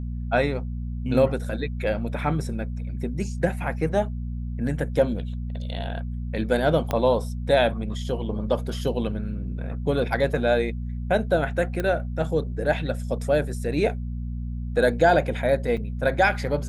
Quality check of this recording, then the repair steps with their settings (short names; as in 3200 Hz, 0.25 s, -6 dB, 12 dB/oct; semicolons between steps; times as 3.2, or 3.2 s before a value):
hum 60 Hz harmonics 4 -30 dBFS
6.91 pop -11 dBFS
11.8 pop -14 dBFS
15.77–15.78 gap 5.6 ms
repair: de-click; de-hum 60 Hz, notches 4; interpolate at 15.77, 5.6 ms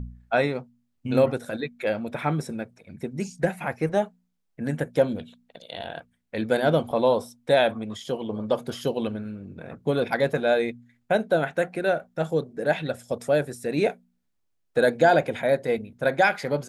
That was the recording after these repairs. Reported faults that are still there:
6.91 pop